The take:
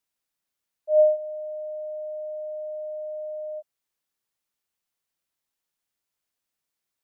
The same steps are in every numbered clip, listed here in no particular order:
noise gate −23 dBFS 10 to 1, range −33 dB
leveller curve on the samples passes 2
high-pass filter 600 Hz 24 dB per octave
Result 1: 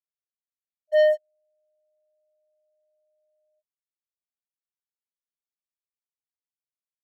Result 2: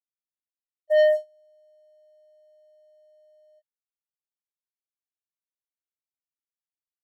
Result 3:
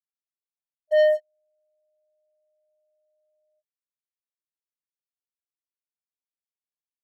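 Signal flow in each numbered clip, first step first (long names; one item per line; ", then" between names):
high-pass filter, then noise gate, then leveller curve on the samples
high-pass filter, then leveller curve on the samples, then noise gate
noise gate, then high-pass filter, then leveller curve on the samples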